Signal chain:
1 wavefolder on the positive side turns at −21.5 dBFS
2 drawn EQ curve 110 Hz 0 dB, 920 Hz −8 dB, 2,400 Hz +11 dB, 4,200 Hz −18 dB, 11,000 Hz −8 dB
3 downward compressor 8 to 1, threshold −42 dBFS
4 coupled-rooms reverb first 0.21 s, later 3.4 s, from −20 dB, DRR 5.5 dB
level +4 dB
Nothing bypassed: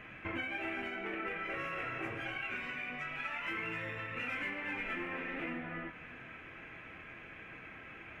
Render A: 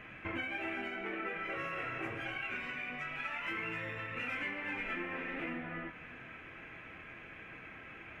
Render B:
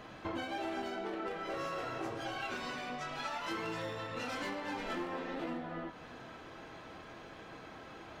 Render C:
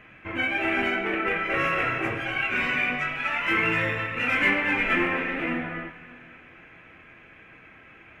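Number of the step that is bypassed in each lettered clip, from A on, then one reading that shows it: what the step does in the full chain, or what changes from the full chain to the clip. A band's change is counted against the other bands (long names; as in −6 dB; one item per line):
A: 1, distortion level −19 dB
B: 2, 2 kHz band −9.0 dB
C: 3, average gain reduction 9.0 dB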